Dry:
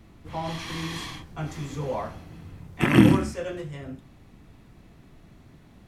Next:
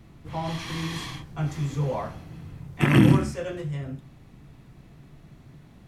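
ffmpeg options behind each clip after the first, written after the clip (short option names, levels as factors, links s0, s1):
-af "equalizer=f=140:t=o:w=0.31:g=9,alimiter=level_in=1.88:limit=0.891:release=50:level=0:latency=1,volume=0.531"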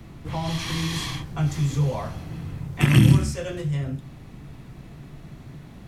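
-filter_complex "[0:a]acrossover=split=150|3000[s0][s1][s2];[s1]acompressor=threshold=0.00794:ratio=2[s3];[s0][s3][s2]amix=inputs=3:normalize=0,volume=2.37"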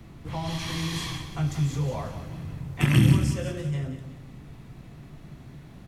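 -af "aecho=1:1:181|362|543|724:0.299|0.119|0.0478|0.0191,volume=0.668"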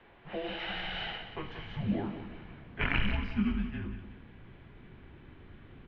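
-af "highpass=f=480:t=q:w=0.5412,highpass=f=480:t=q:w=1.307,lowpass=f=3500:t=q:w=0.5176,lowpass=f=3500:t=q:w=0.7071,lowpass=f=3500:t=q:w=1.932,afreqshift=-310,asubboost=boost=7:cutoff=230"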